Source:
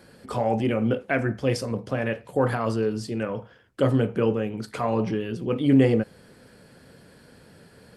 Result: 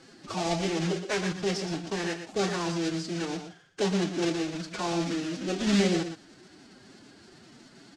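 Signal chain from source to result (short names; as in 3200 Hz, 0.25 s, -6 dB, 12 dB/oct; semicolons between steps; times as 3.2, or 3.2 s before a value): block floating point 3-bit; high shelf 4600 Hz +10.5 dB; in parallel at -0.5 dB: compressor, threshold -31 dBFS, peak gain reduction 17.5 dB; on the sum: formant-preserving pitch shift +7 st; LPF 6500 Hz 24 dB/oct; echo 0.118 s -9 dB; gain -7.5 dB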